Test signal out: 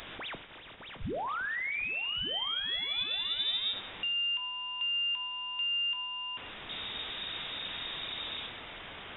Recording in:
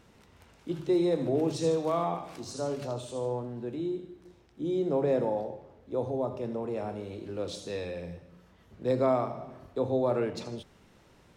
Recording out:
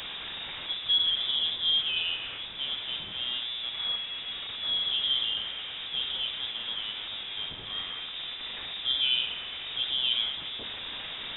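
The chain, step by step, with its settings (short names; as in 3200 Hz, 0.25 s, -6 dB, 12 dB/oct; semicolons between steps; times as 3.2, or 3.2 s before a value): delta modulation 64 kbps, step -30.5 dBFS; plate-style reverb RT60 0.88 s, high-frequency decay 0.6×, DRR 7.5 dB; inverted band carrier 3700 Hz; gain -2 dB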